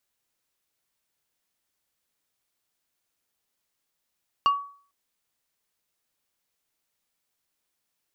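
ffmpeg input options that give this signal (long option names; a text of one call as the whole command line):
ffmpeg -f lavfi -i "aevalsrc='0.188*pow(10,-3*t/0.46)*sin(2*PI*1130*t)+0.0596*pow(10,-3*t/0.153)*sin(2*PI*2825*t)+0.0188*pow(10,-3*t/0.087)*sin(2*PI*4520*t)+0.00596*pow(10,-3*t/0.067)*sin(2*PI*5650*t)+0.00188*pow(10,-3*t/0.049)*sin(2*PI*7345*t)':duration=0.45:sample_rate=44100" out.wav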